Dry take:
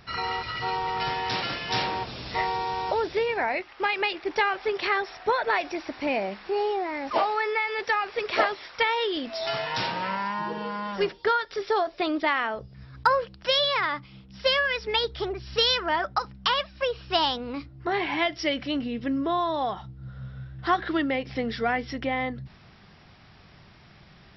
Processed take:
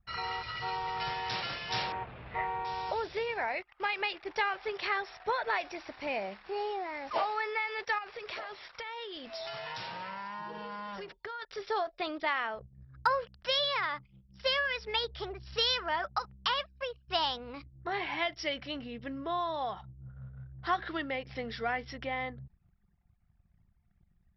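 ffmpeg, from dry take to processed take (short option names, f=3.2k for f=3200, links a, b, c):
-filter_complex "[0:a]asettb=1/sr,asplit=3[a][b][c];[a]atrim=end=1.924[d];[b]atrim=start=1.92:end=2.65,asetpts=PTS-STARTPTS,afade=t=in:d=0.004:c=qsin,afade=t=out:st=0.726:d=0.004:c=qsin,lowpass=f=2.4k:w=0.5412,lowpass=f=2.4k:w=1.3066[e];[c]atrim=start=2.646[f];[d][e]acrossfade=d=0.004:c1=hsin:c2=qsin[g];[g][f]acrossfade=d=0.004:c1=qsin:c2=hsin,asettb=1/sr,asplit=3[h][i][j];[h]atrim=end=7.984[k];[i]atrim=start=7.98:end=11.42,asetpts=PTS-STARTPTS,afade=t=in:d=0.004:c=qsin,afade=t=out:st=3.436:d=0.004:c=qsin,acompressor=threshold=-29dB:ratio=16:attack=3.2:release=140:knee=1:detection=peak[l];[j]atrim=start=11.416[m];[k][l]acrossfade=d=0.004:c1=hsin:c2=qsin[n];[n][m]acrossfade=d=0.004:c1=qsin:c2=hsin,asplit=2[o][p];[o]atrim=end=17.08,asetpts=PTS-STARTPTS,afade=t=out:st=16.5:d=0.58:c=qsin:silence=0.354813[q];[p]atrim=start=17.08,asetpts=PTS-STARTPTS,afade=t=in:d=0.004:c=hsin:silence=0.354813[r];[q][r]concat=n=2:v=0:a=1,equalizer=f=280:t=o:w=1.1:g=-7.5,anlmdn=0.0398,volume=-6dB"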